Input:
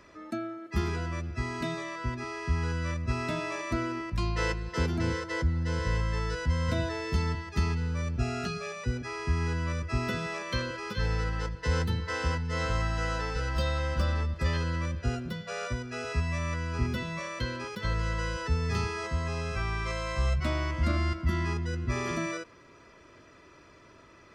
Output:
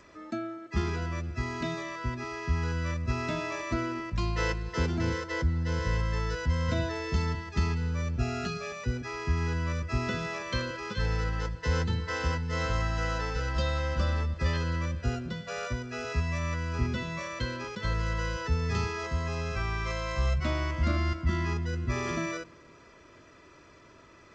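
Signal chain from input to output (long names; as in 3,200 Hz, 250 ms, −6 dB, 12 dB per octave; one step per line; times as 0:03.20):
bucket-brigade delay 255 ms, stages 1,024, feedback 34%, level −24 dB
G.722 64 kbit/s 16,000 Hz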